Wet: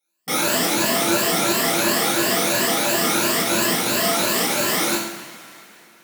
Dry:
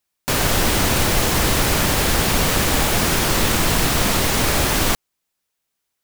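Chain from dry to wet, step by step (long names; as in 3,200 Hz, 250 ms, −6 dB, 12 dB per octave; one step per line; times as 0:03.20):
rippled gain that drifts along the octave scale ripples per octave 1.4, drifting +2.9 Hz, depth 20 dB
tube saturation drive 14 dB, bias 0.5
Butterworth high-pass 150 Hz 36 dB per octave
tuned comb filter 340 Hz, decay 0.56 s, mix 70%
feedback echo with a band-pass in the loop 271 ms, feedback 63%, band-pass 1,800 Hz, level −16.5 dB
coupled-rooms reverb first 0.65 s, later 3.2 s, from −19 dB, DRR −5 dB
level +3 dB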